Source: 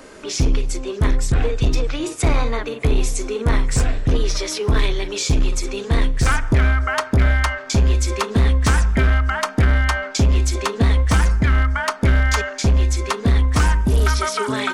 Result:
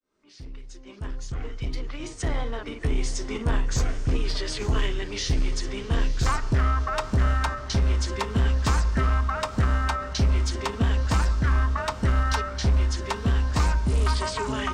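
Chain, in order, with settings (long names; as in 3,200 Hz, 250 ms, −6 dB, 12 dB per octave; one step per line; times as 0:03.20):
fade in at the beginning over 3.30 s
on a send: feedback delay with all-pass diffusion 934 ms, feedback 52%, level −14 dB
on the sum: formants moved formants −3 semitones
level −6.5 dB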